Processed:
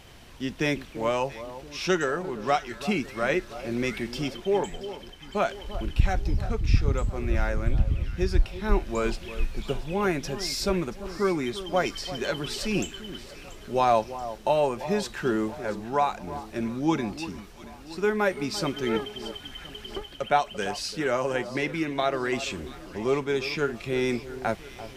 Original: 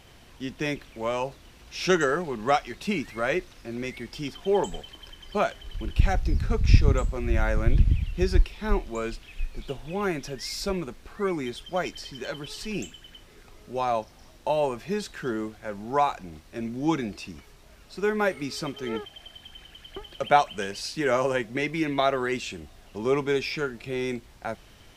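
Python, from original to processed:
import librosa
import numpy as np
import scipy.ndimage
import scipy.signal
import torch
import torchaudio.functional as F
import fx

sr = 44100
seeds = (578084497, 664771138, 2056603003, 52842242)

p1 = fx.rider(x, sr, range_db=5, speed_s=0.5)
y = p1 + fx.echo_alternate(p1, sr, ms=341, hz=1200.0, feedback_pct=70, wet_db=-13, dry=0)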